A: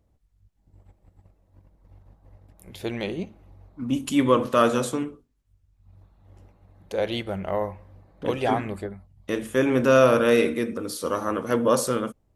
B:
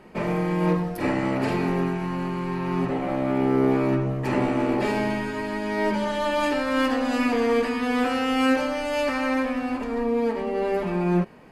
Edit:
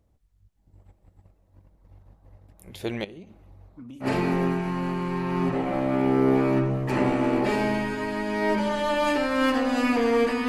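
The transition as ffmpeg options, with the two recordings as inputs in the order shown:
-filter_complex "[0:a]asettb=1/sr,asplit=3[a][b][c];[a]atrim=end=3.044[d];[b]atrim=start=3.04:end=4.08,asetpts=PTS-STARTPTS,afade=t=in:d=0.004:c=qsin,afade=t=out:st=1.036:d=0.004:c=qsin,acompressor=threshold=-39dB:ratio=10:attack=3.2:release=140:knee=1:detection=peak[e];[c]atrim=start=4.076[f];[d][e]acrossfade=d=0.004:c1=hsin:c2=qsin[g];[g][f]acrossfade=d=0.004:c1=qsin:c2=hsin,apad=whole_dur=10.48,atrim=end=10.48,atrim=end=4.08,asetpts=PTS-STARTPTS[h];[1:a]atrim=start=1.36:end=7.84,asetpts=PTS-STARTPTS[i];[h][i]acrossfade=d=0.08:c1=tri:c2=tri"

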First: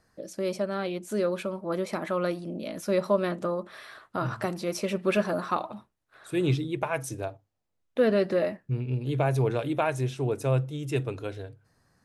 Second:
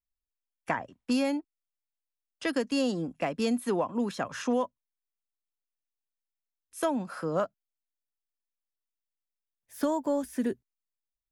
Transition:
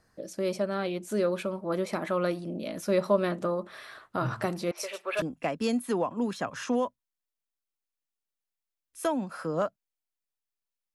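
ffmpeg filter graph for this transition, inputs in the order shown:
-filter_complex "[0:a]asettb=1/sr,asplit=3[a][b][c];[a]atrim=end=4.714[d];[b]atrim=start=4.71:end=5.22,asetpts=PTS-STARTPTS,afade=t=in:d=0.004:c=qsin,afade=t=out:st=0.506:d=0.004:c=qsin,acrossover=split=530|3000[e][f][g];[g]adelay=50[h];[e]adelay=480[i];[i][f][h]amix=inputs=3:normalize=0,atrim=end_sample=22491[j];[c]atrim=start=5.216[k];[d][j]acrossfade=d=0.004:c1=hsin:c2=qsin[l];[l][k]acrossfade=d=0.004:c1=qsin:c2=hsin,apad=whole_dur=10.94,atrim=end=10.94,atrim=end=5.222[m];[1:a]atrim=start=2.998:end=8.72[n];[m][n]acrossfade=d=0.004:c1=hsin:c2=hsin"

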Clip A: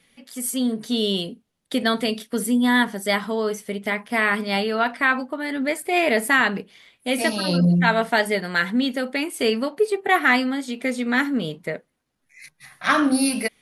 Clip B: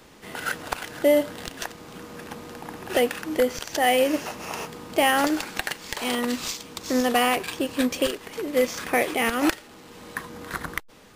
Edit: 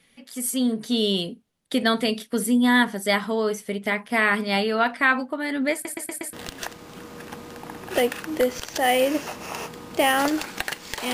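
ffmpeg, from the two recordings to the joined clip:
-filter_complex "[0:a]apad=whole_dur=11.13,atrim=end=11.13,asplit=5[a][b][c][d][e];[a]atrim=end=5.852[f];[b]atrim=start=5.728:end=5.852[g];[c]atrim=start=5.728:end=5.852[h];[d]atrim=start=5.728:end=5.852[i];[e]atrim=start=5.728:end=5.852[j];[1:a]atrim=start=1.318:end=6.12[k];[f][g]acrossfade=d=0.004:c1=hsin:c2=hsin[l];[l][h]acrossfade=d=0.004:c1=hsin:c2=hsin[m];[m][i]acrossfade=d=0.004:c1=hsin:c2=hsin[n];[n][j]acrossfade=d=0.004:c1=hsin:c2=hsin[o];[o][k]acrossfade=d=0.004:c1=hsin:c2=hsin"

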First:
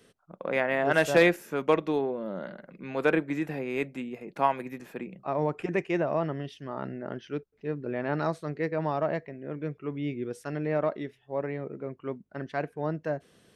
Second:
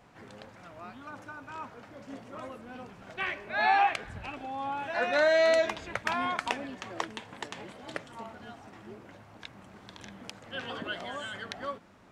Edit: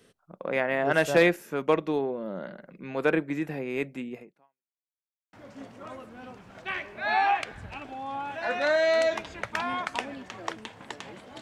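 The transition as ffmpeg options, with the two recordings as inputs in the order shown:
-filter_complex "[0:a]apad=whole_dur=11.41,atrim=end=11.41,asplit=2[a][b];[a]atrim=end=4.8,asetpts=PTS-STARTPTS,afade=t=out:st=4.2:d=0.6:c=exp[c];[b]atrim=start=4.8:end=5.33,asetpts=PTS-STARTPTS,volume=0[d];[1:a]atrim=start=1.85:end=7.93,asetpts=PTS-STARTPTS,afade=t=in:d=0.004:c=hsin[e];[c][d][e]concat=n=3:v=0:a=1"

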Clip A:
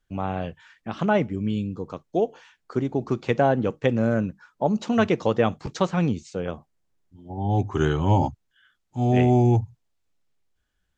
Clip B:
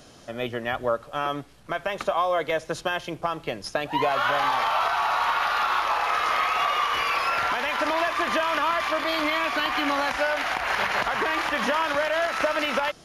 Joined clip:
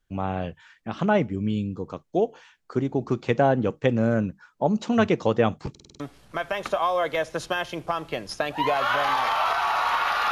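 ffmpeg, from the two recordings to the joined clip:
-filter_complex "[0:a]apad=whole_dur=10.31,atrim=end=10.31,asplit=6[a][b][c][d][e][f];[a]atrim=end=5.752[g];[b]atrim=start=5.698:end=5.752[h];[c]atrim=start=5.698:end=5.752[i];[d]atrim=start=5.698:end=5.752[j];[e]atrim=start=5.698:end=5.752[k];[f]atrim=start=5.698:end=5.752[l];[1:a]atrim=start=1.348:end=5.66[m];[g][h]acrossfade=d=0.004:c1=hsin:c2=hsin[n];[n][i]acrossfade=d=0.004:c1=hsin:c2=hsin[o];[o][j]acrossfade=d=0.004:c1=hsin:c2=hsin[p];[p][k]acrossfade=d=0.004:c1=hsin:c2=hsin[q];[q][l]acrossfade=d=0.004:c1=hsin:c2=hsin[r];[r][m]acrossfade=d=0.004:c1=hsin:c2=hsin"

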